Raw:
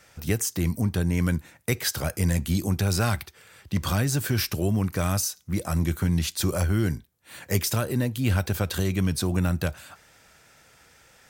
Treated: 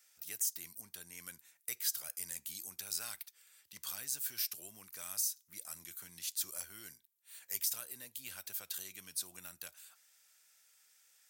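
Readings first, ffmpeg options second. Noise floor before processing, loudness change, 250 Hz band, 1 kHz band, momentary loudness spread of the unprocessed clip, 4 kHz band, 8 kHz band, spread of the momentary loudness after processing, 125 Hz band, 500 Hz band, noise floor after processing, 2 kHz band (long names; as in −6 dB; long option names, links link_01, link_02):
−57 dBFS, −13.5 dB, −37.0 dB, −23.5 dB, 5 LU, −11.0 dB, −6.5 dB, 14 LU, below −40 dB, −30.5 dB, −73 dBFS, −18.5 dB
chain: -af "aderivative,volume=-7dB"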